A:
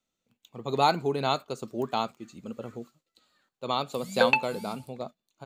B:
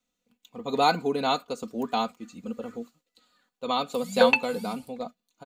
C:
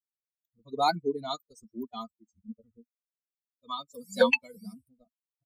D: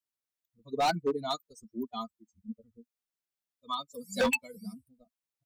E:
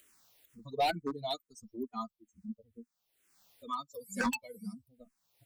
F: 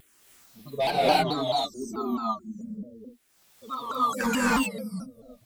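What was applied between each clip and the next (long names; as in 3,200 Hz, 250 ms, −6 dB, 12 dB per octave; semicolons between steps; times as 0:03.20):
comb filter 4.1 ms, depth 74%
spectral dynamics exaggerated over time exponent 3
hard clipping −24 dBFS, distortion −6 dB; level +1.5 dB
upward compression, threshold −39 dBFS; frequency shifter mixed with the dry sound −2.2 Hz
reverb whose tail is shaped and stops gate 340 ms rising, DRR −7.5 dB; pitch modulation by a square or saw wave saw down 4.6 Hz, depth 160 cents; level +2.5 dB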